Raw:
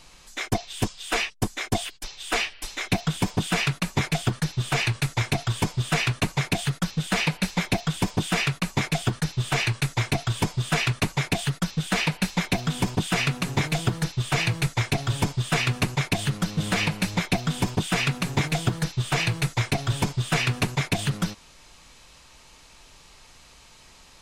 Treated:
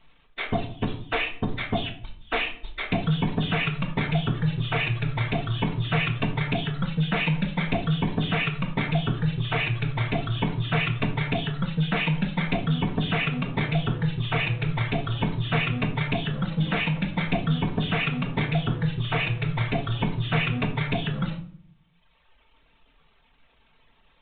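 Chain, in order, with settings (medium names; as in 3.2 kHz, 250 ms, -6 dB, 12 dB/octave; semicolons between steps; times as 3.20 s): jump at every zero crossing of -25.5 dBFS; gate -27 dBFS, range -24 dB; reverb removal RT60 1.5 s; simulated room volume 700 m³, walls furnished, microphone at 1.6 m; resampled via 8 kHz; trim -4 dB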